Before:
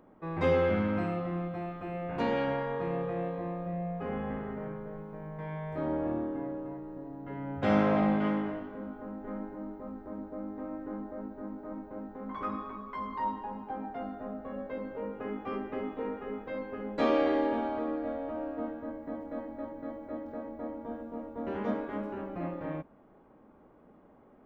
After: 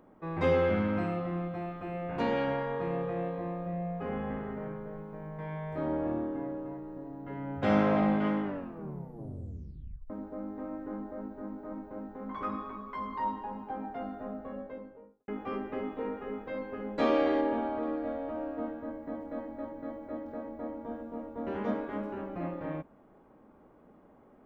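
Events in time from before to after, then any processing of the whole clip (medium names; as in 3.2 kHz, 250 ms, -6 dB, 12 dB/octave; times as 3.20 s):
8.43 s: tape stop 1.67 s
14.30–15.28 s: studio fade out
17.41–17.83 s: low-pass 2.8 kHz 6 dB/octave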